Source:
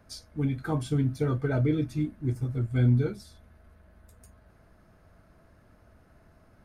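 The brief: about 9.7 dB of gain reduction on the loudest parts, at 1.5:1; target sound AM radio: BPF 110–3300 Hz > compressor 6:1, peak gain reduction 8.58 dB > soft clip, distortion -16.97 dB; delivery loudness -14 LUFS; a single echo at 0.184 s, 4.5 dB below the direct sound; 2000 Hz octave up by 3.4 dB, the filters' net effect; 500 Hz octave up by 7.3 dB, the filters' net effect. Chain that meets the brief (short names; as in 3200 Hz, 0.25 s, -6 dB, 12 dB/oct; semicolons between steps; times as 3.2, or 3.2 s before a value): bell 500 Hz +8.5 dB; bell 2000 Hz +4.5 dB; compressor 1.5:1, threshold -45 dBFS; BPF 110–3300 Hz; echo 0.184 s -4.5 dB; compressor 6:1, threshold -34 dBFS; soft clip -32.5 dBFS; gain +27 dB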